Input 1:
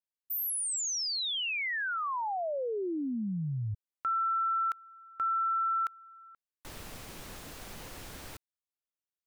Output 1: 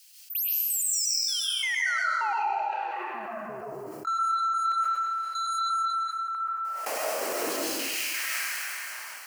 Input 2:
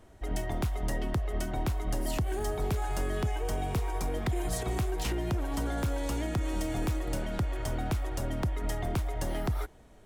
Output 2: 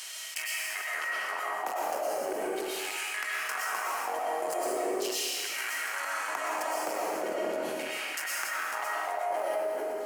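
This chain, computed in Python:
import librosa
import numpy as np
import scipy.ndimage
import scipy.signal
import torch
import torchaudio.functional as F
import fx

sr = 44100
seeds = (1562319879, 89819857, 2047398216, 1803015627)

y = fx.echo_feedback(x, sr, ms=299, feedback_pct=23, wet_db=-23)
y = 10.0 ** (-34.5 / 20.0) * np.tanh(y / 10.0 ** (-34.5 / 20.0))
y = fx.filter_lfo_highpass(y, sr, shape='saw_down', hz=0.4, low_hz=330.0, high_hz=3700.0, q=2.4)
y = scipy.signal.sosfilt(scipy.signal.butter(2, 220.0, 'highpass', fs=sr, output='sos'), y)
y = fx.step_gate(y, sr, bpm=129, pattern='x..x..x.', floor_db=-24.0, edge_ms=4.5)
y = fx.peak_eq(y, sr, hz=3600.0, db=-13.5, octaves=0.29)
y = fx.rev_freeverb(y, sr, rt60_s=1.2, hf_ratio=1.0, predelay_ms=80, drr_db=-7.0)
y = fx.env_flatten(y, sr, amount_pct=70)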